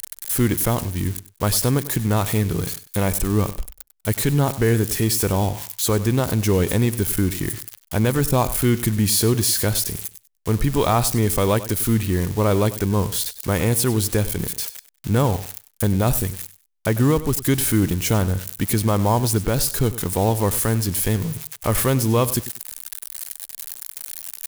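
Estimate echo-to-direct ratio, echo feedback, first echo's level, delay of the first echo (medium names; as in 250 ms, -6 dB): -15.5 dB, 22%, -15.5 dB, 97 ms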